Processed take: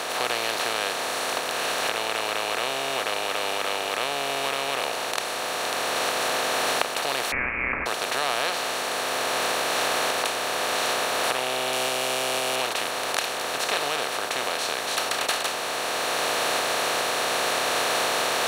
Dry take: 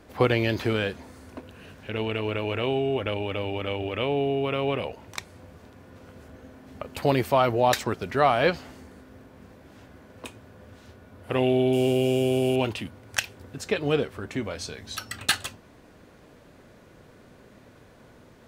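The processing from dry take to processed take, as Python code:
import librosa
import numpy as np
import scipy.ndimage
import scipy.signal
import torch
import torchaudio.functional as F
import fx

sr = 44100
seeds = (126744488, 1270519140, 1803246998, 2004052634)

y = fx.bin_compress(x, sr, power=0.2)
y = fx.recorder_agc(y, sr, target_db=-2.0, rise_db_per_s=6.4, max_gain_db=30)
y = fx.highpass(y, sr, hz=1400.0, slope=6)
y = fx.freq_invert(y, sr, carrier_hz=2900, at=(7.32, 7.86))
y = F.gain(torch.from_numpy(y), -6.5).numpy()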